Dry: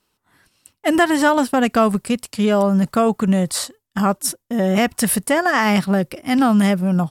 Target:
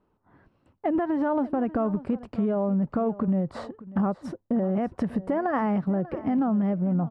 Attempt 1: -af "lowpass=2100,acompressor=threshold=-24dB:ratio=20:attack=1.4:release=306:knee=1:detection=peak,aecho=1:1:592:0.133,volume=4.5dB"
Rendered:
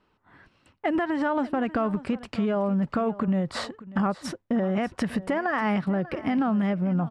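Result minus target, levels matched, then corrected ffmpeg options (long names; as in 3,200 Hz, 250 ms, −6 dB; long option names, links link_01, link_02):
2,000 Hz band +8.5 dB
-af "lowpass=850,acompressor=threshold=-24dB:ratio=20:attack=1.4:release=306:knee=1:detection=peak,aecho=1:1:592:0.133,volume=4.5dB"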